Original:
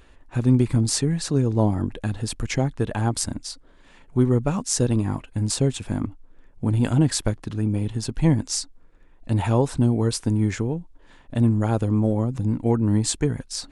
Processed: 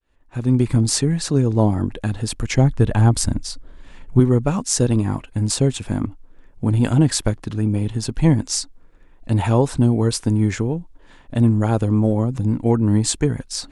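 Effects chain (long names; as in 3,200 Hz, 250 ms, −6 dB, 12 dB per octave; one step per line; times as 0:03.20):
fade in at the beginning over 0.73 s
0:02.58–0:04.20: low-shelf EQ 140 Hz +11.5 dB
level +3.5 dB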